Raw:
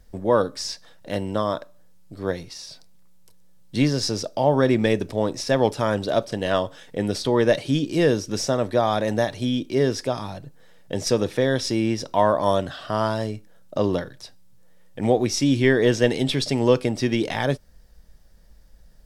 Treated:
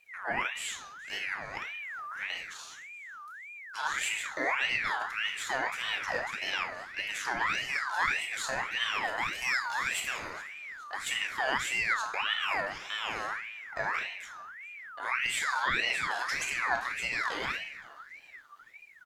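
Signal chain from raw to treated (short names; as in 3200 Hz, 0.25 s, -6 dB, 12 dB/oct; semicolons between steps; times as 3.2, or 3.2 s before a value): 9.31–10.17 high shelf 3700 Hz +10 dB; harmonic-percussive split harmonic +3 dB; low shelf 280 Hz -7.5 dB; 1.31–2.3 negative-ratio compressor -31 dBFS, ratio -1; limiter -13 dBFS, peak gain reduction 8 dB; frequency-shifting echo 0.419 s, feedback 54%, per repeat -70 Hz, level -22 dB; shoebox room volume 170 m³, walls mixed, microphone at 0.86 m; ring modulator with a swept carrier 1800 Hz, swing 35%, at 1.7 Hz; gain -8 dB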